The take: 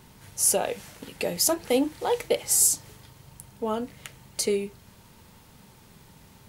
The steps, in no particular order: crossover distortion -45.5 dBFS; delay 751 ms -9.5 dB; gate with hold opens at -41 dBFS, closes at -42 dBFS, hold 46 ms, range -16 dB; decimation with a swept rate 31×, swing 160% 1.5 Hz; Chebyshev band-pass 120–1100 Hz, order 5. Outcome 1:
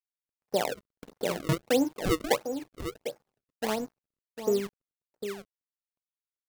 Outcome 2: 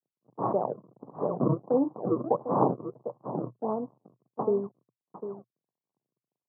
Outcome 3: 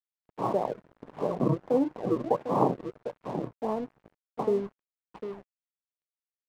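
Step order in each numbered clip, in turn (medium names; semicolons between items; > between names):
Chebyshev band-pass > crossover distortion > delay > gate with hold > decimation with a swept rate; delay > crossover distortion > gate with hold > decimation with a swept rate > Chebyshev band-pass; delay > decimation with a swept rate > gate with hold > Chebyshev band-pass > crossover distortion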